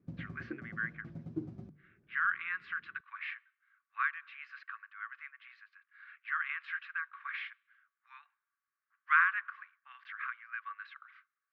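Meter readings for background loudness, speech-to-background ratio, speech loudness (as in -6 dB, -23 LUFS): -46.0 LUFS, 10.0 dB, -36.0 LUFS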